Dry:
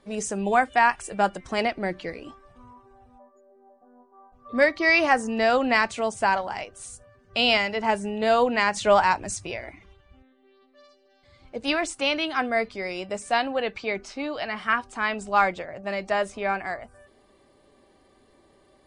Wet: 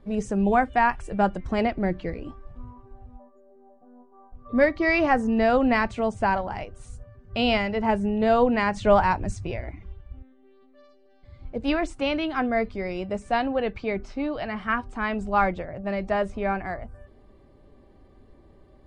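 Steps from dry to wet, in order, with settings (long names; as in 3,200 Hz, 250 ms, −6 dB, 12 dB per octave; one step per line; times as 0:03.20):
RIAA equalisation playback
level −1.5 dB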